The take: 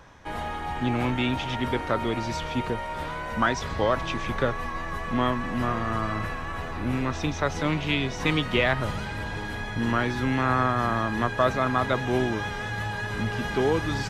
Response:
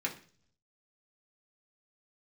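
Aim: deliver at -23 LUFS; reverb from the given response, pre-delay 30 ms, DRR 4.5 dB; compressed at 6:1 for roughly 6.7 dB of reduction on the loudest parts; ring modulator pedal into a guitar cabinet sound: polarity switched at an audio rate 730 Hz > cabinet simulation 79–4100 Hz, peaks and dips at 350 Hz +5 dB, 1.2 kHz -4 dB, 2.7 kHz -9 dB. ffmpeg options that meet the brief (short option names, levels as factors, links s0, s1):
-filter_complex "[0:a]acompressor=threshold=0.0562:ratio=6,asplit=2[s0][s1];[1:a]atrim=start_sample=2205,adelay=30[s2];[s1][s2]afir=irnorm=-1:irlink=0,volume=0.355[s3];[s0][s3]amix=inputs=2:normalize=0,aeval=exprs='val(0)*sgn(sin(2*PI*730*n/s))':c=same,highpass=79,equalizer=f=350:t=q:w=4:g=5,equalizer=f=1200:t=q:w=4:g=-4,equalizer=f=2700:t=q:w=4:g=-9,lowpass=f=4100:w=0.5412,lowpass=f=4100:w=1.3066,volume=2.24"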